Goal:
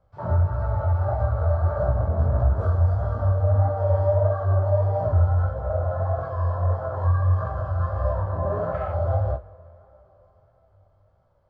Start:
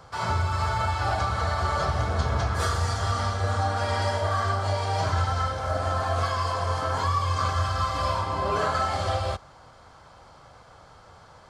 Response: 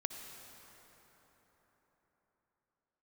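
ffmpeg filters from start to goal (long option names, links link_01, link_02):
-filter_complex "[0:a]equalizer=frequency=600:width_type=o:width=0.34:gain=13.5,afwtdn=0.0562,asplit=2[link_01][link_02];[1:a]atrim=start_sample=2205,adelay=41[link_03];[link_02][link_03]afir=irnorm=-1:irlink=0,volume=-16dB[link_04];[link_01][link_04]amix=inputs=2:normalize=0,flanger=delay=3.6:depth=5.6:regen=-86:speed=0.37:shape=triangular,aemphasis=mode=reproduction:type=riaa,flanger=delay=16.5:depth=7.7:speed=1.6"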